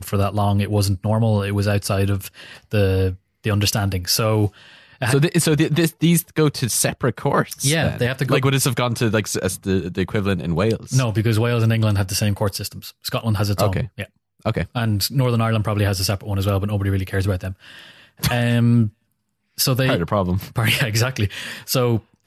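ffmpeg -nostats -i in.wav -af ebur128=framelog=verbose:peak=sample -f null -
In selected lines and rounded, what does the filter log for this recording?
Integrated loudness:
  I:         -20.2 LUFS
  Threshold: -30.5 LUFS
Loudness range:
  LRA:         3.0 LU
  Threshold: -40.5 LUFS
  LRA low:   -22.0 LUFS
  LRA high:  -19.0 LUFS
Sample peak:
  Peak:       -4.7 dBFS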